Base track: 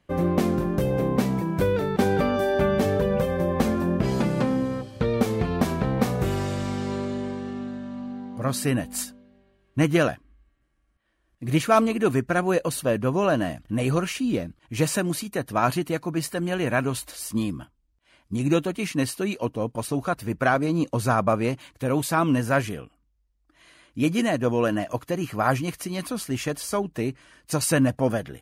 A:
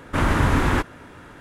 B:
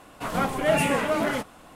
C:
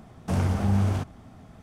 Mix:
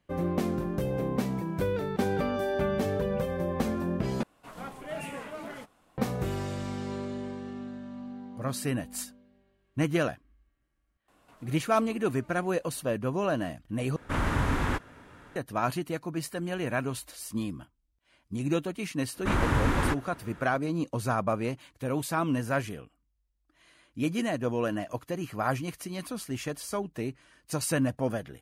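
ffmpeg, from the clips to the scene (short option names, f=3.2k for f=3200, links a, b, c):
-filter_complex "[2:a]asplit=2[a][b];[1:a]asplit=2[c][d];[0:a]volume=-6.5dB[e];[b]acompressor=threshold=-36dB:ratio=16:attack=0.27:release=243:knee=1:detection=peak[f];[c]equalizer=f=340:w=6.2:g=-3.5[g];[e]asplit=3[h][i][j];[h]atrim=end=4.234[k];[a]atrim=end=1.75,asetpts=PTS-STARTPTS,volume=-15.5dB[l];[i]atrim=start=5.976:end=13.964[m];[g]atrim=end=1.4,asetpts=PTS-STARTPTS,volume=-8dB[n];[j]atrim=start=15.356[o];[f]atrim=end=1.75,asetpts=PTS-STARTPTS,volume=-15dB,afade=t=in:d=0.004:c=hsin,afade=t=out:st=1.746:d=0.004:c=hsin,adelay=11080[p];[d]atrim=end=1.4,asetpts=PTS-STARTPTS,volume=-6.5dB,afade=t=in:d=0.1,afade=t=out:st=1.3:d=0.1,adelay=19120[q];[k][l]acrossfade=d=0.004:c1=hsin:c2=hsin[r];[r][m]acrossfade=d=0.004:c1=hsin:c2=hsin[s];[s][n]acrossfade=d=0.004:c1=hsin:c2=hsin[t];[t][o]acrossfade=d=0.004:c1=hsin:c2=hsin[u];[u][p][q]amix=inputs=3:normalize=0"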